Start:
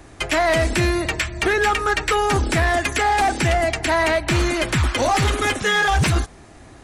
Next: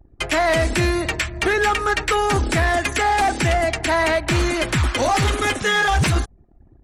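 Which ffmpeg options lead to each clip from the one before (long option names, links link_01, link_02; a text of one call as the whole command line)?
ffmpeg -i in.wav -af "anlmdn=2.51" out.wav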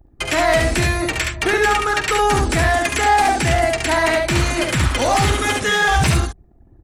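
ffmpeg -i in.wav -filter_complex "[0:a]highshelf=frequency=8100:gain=5,asplit=2[link_01][link_02];[link_02]aecho=0:1:47|70:0.251|0.668[link_03];[link_01][link_03]amix=inputs=2:normalize=0" out.wav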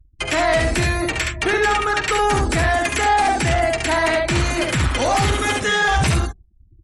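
ffmpeg -i in.wav -af "asoftclip=type=tanh:threshold=-10dB,afftdn=noise_reduction=33:noise_floor=-38" out.wav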